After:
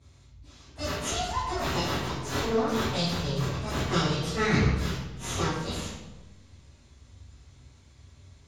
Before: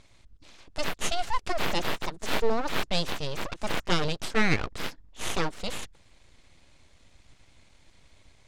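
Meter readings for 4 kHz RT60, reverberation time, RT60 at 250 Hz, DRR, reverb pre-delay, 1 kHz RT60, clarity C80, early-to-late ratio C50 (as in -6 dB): 0.75 s, 1.1 s, 1.4 s, -14.0 dB, 3 ms, 1.0 s, 3.0 dB, 0.0 dB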